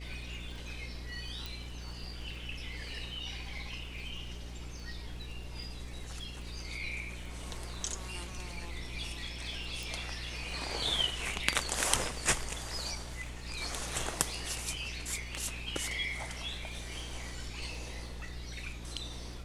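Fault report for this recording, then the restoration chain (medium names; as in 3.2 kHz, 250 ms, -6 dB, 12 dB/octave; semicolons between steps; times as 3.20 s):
crackle 23 per s -45 dBFS
hum 60 Hz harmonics 7 -44 dBFS
1.46 s: pop
9.83 s: pop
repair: de-click; de-hum 60 Hz, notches 7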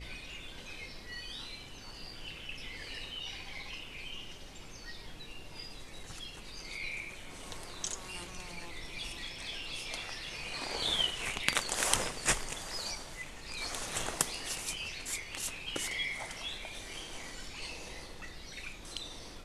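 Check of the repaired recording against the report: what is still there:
9.83 s: pop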